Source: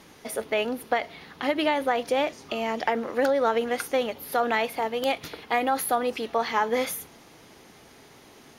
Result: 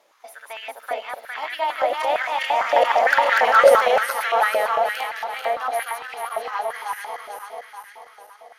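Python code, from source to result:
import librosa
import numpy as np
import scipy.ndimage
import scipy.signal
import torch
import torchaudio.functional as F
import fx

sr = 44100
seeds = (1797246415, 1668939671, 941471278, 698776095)

y = fx.reverse_delay_fb(x, sr, ms=211, feedback_pct=78, wet_db=-1.5)
y = fx.doppler_pass(y, sr, speed_mps=14, closest_m=7.9, pass_at_s=3.47)
y = fx.filter_held_highpass(y, sr, hz=8.8, low_hz=610.0, high_hz=1800.0)
y = F.gain(torch.from_numpy(y), 4.5).numpy()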